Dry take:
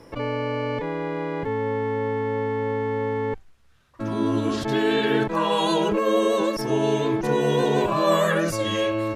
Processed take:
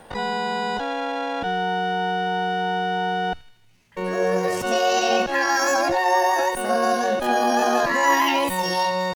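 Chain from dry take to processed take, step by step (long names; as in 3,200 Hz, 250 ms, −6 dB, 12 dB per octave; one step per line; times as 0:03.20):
pitch shifter +9 semitones
delay with a high-pass on its return 78 ms, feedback 60%, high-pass 2,800 Hz, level −12 dB
level +1.5 dB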